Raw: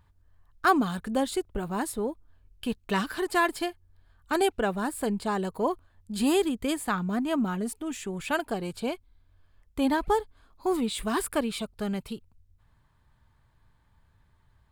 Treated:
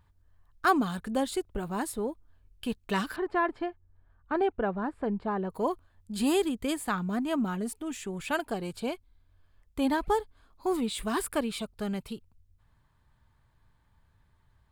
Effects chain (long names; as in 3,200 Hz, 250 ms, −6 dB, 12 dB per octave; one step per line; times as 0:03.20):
0:03.16–0:05.50: low-pass filter 1,600 Hz 12 dB per octave
level −2 dB